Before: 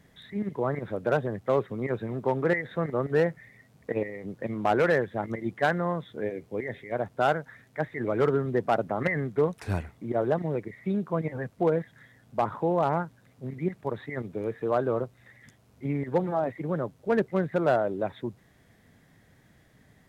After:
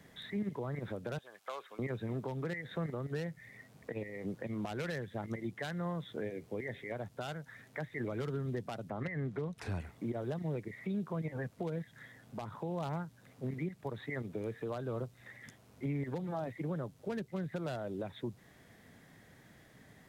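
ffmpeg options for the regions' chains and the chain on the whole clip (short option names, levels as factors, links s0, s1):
-filter_complex "[0:a]asettb=1/sr,asplit=3[s0][s1][s2];[s0]atrim=end=1.184[s3];[s1]atrim=start=1.18:end=1.79,asetpts=PTS-STARTPTS,afade=t=in:d=0.004:c=qsin,afade=t=out:st=0.606:d=0.004:c=qsin,highpass=1100,bandreject=f=1900:w=7[s4];[s2]atrim=start=1.786[s5];[s3][s4]acrossfade=d=0.004:c1=hsin:c2=qsin[s6];[s6][s5]acrossfade=d=0.004:c1=qsin:c2=hsin,asettb=1/sr,asplit=3[s7][s8][s9];[s7]atrim=end=8.904[s10];[s8]atrim=start=8.9:end=9.8,asetpts=PTS-STARTPTS,afade=t=in:d=0.004:c=qsin,afade=t=out:st=0.896:d=0.004:c=qsin,lowpass=f=2700:p=1,acompressor=mode=upward:threshold=0.0178:ratio=2.5:attack=3.2:release=140:knee=2.83:detection=peak[s11];[s9]atrim=start=9.796[s12];[s10][s11]acrossfade=d=0.004:c1=hsin:c2=qsin[s13];[s13][s12]acrossfade=d=0.004:c1=qsin:c2=hsin,lowshelf=f=110:g=-8,acrossover=split=180|3000[s14][s15][s16];[s15]acompressor=threshold=0.0112:ratio=5[s17];[s14][s17][s16]amix=inputs=3:normalize=0,alimiter=level_in=2.11:limit=0.0631:level=0:latency=1:release=266,volume=0.473,volume=1.26"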